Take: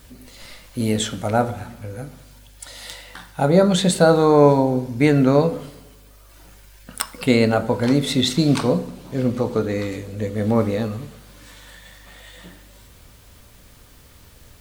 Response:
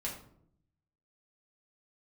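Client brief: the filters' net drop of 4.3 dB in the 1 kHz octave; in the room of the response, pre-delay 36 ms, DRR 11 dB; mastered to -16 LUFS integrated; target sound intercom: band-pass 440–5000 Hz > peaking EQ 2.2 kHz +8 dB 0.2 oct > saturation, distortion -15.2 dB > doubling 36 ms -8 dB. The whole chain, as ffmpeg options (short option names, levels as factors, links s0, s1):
-filter_complex "[0:a]equalizer=f=1000:t=o:g=-5.5,asplit=2[s0][s1];[1:a]atrim=start_sample=2205,adelay=36[s2];[s1][s2]afir=irnorm=-1:irlink=0,volume=0.237[s3];[s0][s3]amix=inputs=2:normalize=0,highpass=440,lowpass=5000,equalizer=f=2200:t=o:w=0.2:g=8,asoftclip=threshold=0.211,asplit=2[s4][s5];[s5]adelay=36,volume=0.398[s6];[s4][s6]amix=inputs=2:normalize=0,volume=2.66"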